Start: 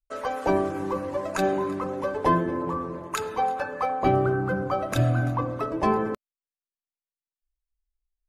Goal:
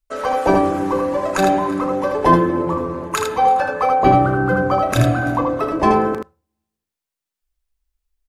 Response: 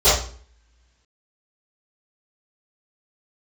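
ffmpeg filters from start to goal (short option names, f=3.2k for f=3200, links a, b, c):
-filter_complex "[0:a]aecho=1:1:35|79:0.316|0.596,asplit=2[a][b];[1:a]atrim=start_sample=2205,asetrate=57330,aresample=44100[c];[b][c]afir=irnorm=-1:irlink=0,volume=-45dB[d];[a][d]amix=inputs=2:normalize=0,volume=7.5dB"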